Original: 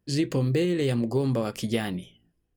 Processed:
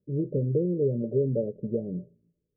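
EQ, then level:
Chebyshev low-pass with heavy ripple 610 Hz, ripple 9 dB
spectral tilt +3 dB per octave
+8.5 dB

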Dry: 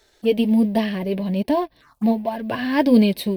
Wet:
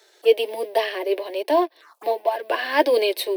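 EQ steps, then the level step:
Butterworth high-pass 330 Hz 72 dB per octave
+3.5 dB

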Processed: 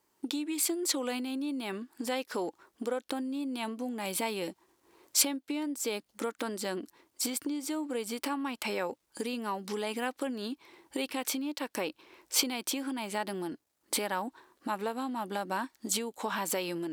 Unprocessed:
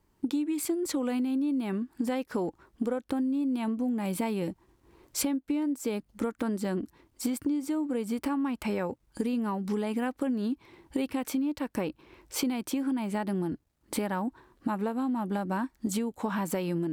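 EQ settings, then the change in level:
high-pass filter 170 Hz 6 dB per octave
dynamic equaliser 3,600 Hz, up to +6 dB, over −56 dBFS, Q 0.88
bass and treble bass −12 dB, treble +5 dB
0.0 dB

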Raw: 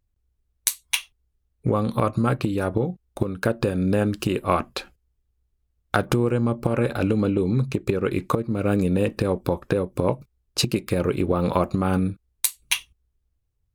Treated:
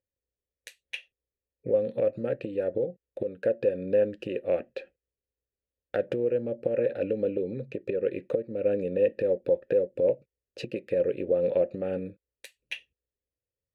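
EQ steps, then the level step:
formant filter e
low-shelf EQ 420 Hz +11.5 dB
0.0 dB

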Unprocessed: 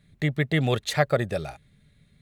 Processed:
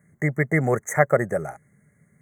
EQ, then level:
high-pass filter 160 Hz 12 dB per octave
Chebyshev band-stop filter 2,100–6,200 Hz, order 5
parametric band 270 Hz −5 dB 0.34 octaves
+5.0 dB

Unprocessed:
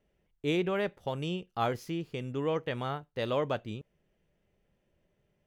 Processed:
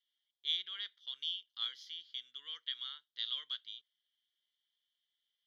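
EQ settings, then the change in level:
four-pole ladder band-pass 3,400 Hz, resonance 80%
phaser with its sweep stopped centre 2,600 Hz, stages 6
+10.5 dB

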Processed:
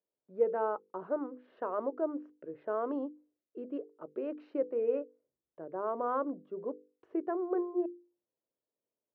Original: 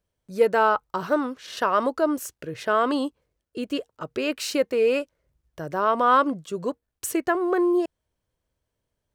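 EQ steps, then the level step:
four-pole ladder band-pass 460 Hz, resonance 20%
high-frequency loss of the air 240 metres
mains-hum notches 50/100/150/200/250/300/350/400/450/500 Hz
+3.0 dB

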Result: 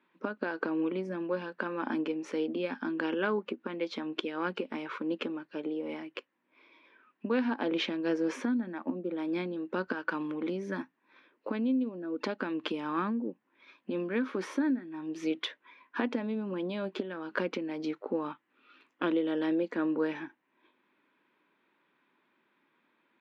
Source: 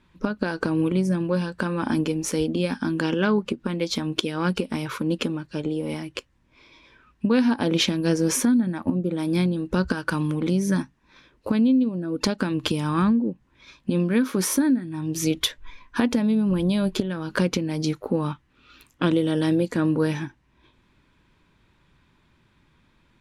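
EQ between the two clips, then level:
high-pass filter 260 Hz 24 dB per octave
Chebyshev low-pass filter 2,300 Hz, order 2
−5.5 dB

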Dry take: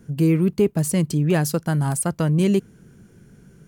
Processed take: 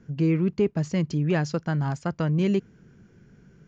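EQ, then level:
Chebyshev low-pass with heavy ripple 7,100 Hz, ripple 3 dB
high-frequency loss of the air 77 metres
−1.5 dB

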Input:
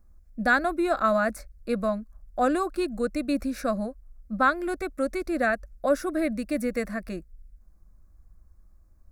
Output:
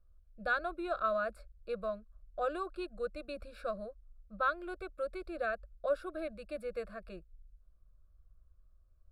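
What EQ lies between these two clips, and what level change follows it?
low-pass filter 6,500 Hz 12 dB per octave
phaser with its sweep stopped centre 1,300 Hz, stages 8
−8.0 dB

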